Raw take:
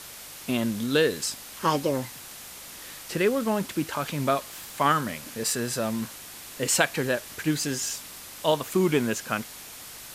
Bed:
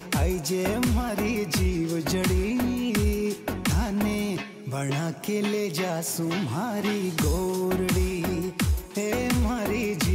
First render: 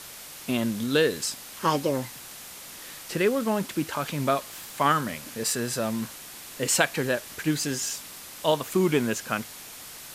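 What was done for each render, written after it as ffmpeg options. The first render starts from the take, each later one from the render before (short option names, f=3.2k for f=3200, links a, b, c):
-af "bandreject=f=50:t=h:w=4,bandreject=f=100:t=h:w=4"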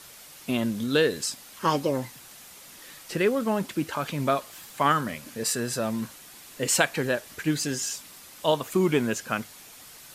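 -af "afftdn=nr=6:nf=-43"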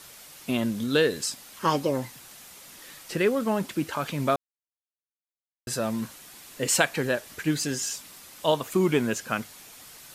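-filter_complex "[0:a]asplit=3[a][b][c];[a]atrim=end=4.36,asetpts=PTS-STARTPTS,afade=t=out:st=4.356:d=0.004:c=hsin[d];[b]atrim=start=4.36:end=5.67,asetpts=PTS-STARTPTS,volume=0[e];[c]atrim=start=5.67,asetpts=PTS-STARTPTS,afade=t=in:d=0.004:c=hsin[f];[d][e][f]concat=n=3:v=0:a=1"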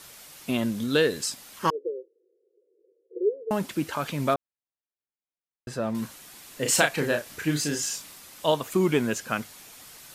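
-filter_complex "[0:a]asettb=1/sr,asplit=3[a][b][c];[a]atrim=end=1.704[d];[b]atrim=start=1.7:end=3.51,asetpts=PTS-STARTPTS,afade=t=in:d=0.004:c=qsin,afade=t=out:st=1.806:d=0.004:c=qsin,asuperpass=centerf=420:order=8:qfactor=2.9[e];[c]atrim=start=3.506[f];[d][e]acrossfade=d=0.004:c1=hsin:c2=qsin[g];[g][f]acrossfade=d=0.004:c1=qsin:c2=hsin,asettb=1/sr,asplit=3[h][i][j];[h]atrim=end=4.344[k];[i]atrim=start=4.34:end=5.95,asetpts=PTS-STARTPTS,afade=t=in:d=0.004:c=qsin,afade=t=out:st=1.606:d=0.004:c=qsin,lowpass=f=1.7k:p=1[l];[j]atrim=start=5.946[m];[k][l]acrossfade=d=0.004:c1=hsin:c2=qsin[n];[n][m]acrossfade=d=0.004:c1=qsin:c2=hsin,asettb=1/sr,asplit=3[o][p][q];[o]atrim=end=6.624[r];[p]atrim=start=6.62:end=8.14,asetpts=PTS-STARTPTS,afade=t=in:d=0.004:c=qsin,afade=t=out:st=1.516:d=0.004:c=qsin,asplit=2[s][t];[t]adelay=34,volume=-5.5dB[u];[s][u]amix=inputs=2:normalize=0,atrim=end_sample=67032[v];[q]atrim=start=8.136[w];[r][v]acrossfade=d=0.004:c1=hsin:c2=qsin[x];[x][w]acrossfade=d=0.004:c1=qsin:c2=hsin"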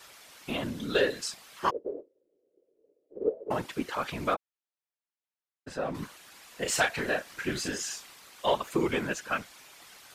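-filter_complex "[0:a]asplit=2[a][b];[b]highpass=f=720:p=1,volume=11dB,asoftclip=type=tanh:threshold=-5dB[c];[a][c]amix=inputs=2:normalize=0,lowpass=f=3.1k:p=1,volume=-6dB,afftfilt=real='hypot(re,im)*cos(2*PI*random(0))':imag='hypot(re,im)*sin(2*PI*random(1))':win_size=512:overlap=0.75"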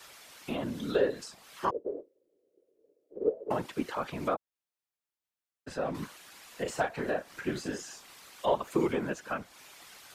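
-filter_complex "[0:a]acrossover=split=120|1200[a][b][c];[a]alimiter=level_in=21dB:limit=-24dB:level=0:latency=1:release=488,volume=-21dB[d];[c]acompressor=threshold=-44dB:ratio=5[e];[d][b][e]amix=inputs=3:normalize=0"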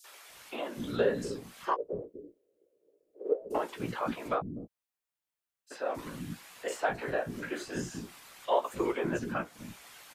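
-filter_complex "[0:a]asplit=2[a][b];[b]adelay=17,volume=-8dB[c];[a][c]amix=inputs=2:normalize=0,acrossover=split=310|5000[d][e][f];[e]adelay=40[g];[d]adelay=290[h];[h][g][f]amix=inputs=3:normalize=0"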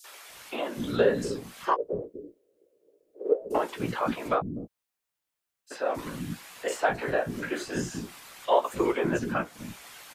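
-af "volume=5dB"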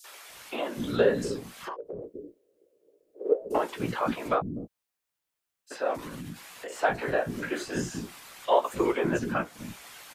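-filter_complex "[0:a]asettb=1/sr,asplit=3[a][b][c];[a]atrim=end=1.524[d];[b]atrim=start=1.52:end=2.09,asetpts=PTS-STARTPTS,afade=t=in:d=0.004:c=qsin,afade=t=out:st=0.566:d=0.004:c=qsin,acompressor=threshold=-33dB:ratio=10:attack=3.2:release=140:knee=1:detection=peak[e];[c]atrim=start=2.086[f];[d][e]acrossfade=d=0.004:c1=hsin:c2=qsin[g];[g][f]acrossfade=d=0.004:c1=qsin:c2=hsin,asettb=1/sr,asplit=3[h][i][j];[h]atrim=end=5.964[k];[i]atrim=start=5.96:end=6.83,asetpts=PTS-STARTPTS,afade=t=in:d=0.004:c=qsin,afade=t=out:st=0.866:d=0.004:c=qsin,acompressor=threshold=-35dB:ratio=6:attack=3.2:release=140:knee=1:detection=peak[l];[j]atrim=start=6.826[m];[k][l]acrossfade=d=0.004:c1=hsin:c2=qsin[n];[n][m]acrossfade=d=0.004:c1=qsin:c2=hsin"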